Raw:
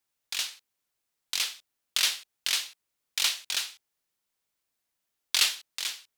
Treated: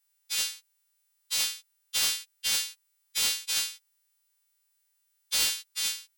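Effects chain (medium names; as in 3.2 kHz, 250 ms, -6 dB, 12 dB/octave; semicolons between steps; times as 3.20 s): partials quantised in pitch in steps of 2 st; high-pass 660 Hz 24 dB/octave; saturation -19.5 dBFS, distortion -8 dB; trim -3 dB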